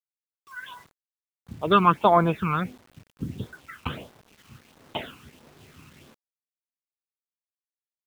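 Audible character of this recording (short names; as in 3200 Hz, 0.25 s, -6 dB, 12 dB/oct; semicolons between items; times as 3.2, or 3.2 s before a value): phasing stages 12, 1.5 Hz, lowest notch 590–2800 Hz; a quantiser's noise floor 10-bit, dither none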